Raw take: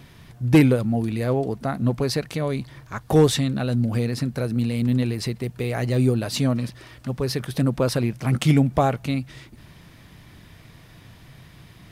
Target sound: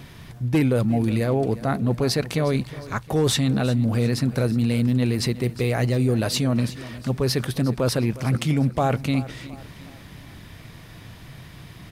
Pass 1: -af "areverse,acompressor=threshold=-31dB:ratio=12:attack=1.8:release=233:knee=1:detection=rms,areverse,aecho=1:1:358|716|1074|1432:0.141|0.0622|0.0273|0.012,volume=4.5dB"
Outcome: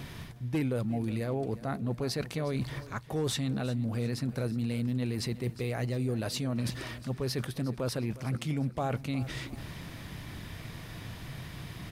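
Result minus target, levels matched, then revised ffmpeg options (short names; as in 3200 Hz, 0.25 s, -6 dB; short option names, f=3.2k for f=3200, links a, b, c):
compressor: peak gain reduction +10.5 dB
-af "areverse,acompressor=threshold=-19.5dB:ratio=12:attack=1.8:release=233:knee=1:detection=rms,areverse,aecho=1:1:358|716|1074|1432:0.141|0.0622|0.0273|0.012,volume=4.5dB"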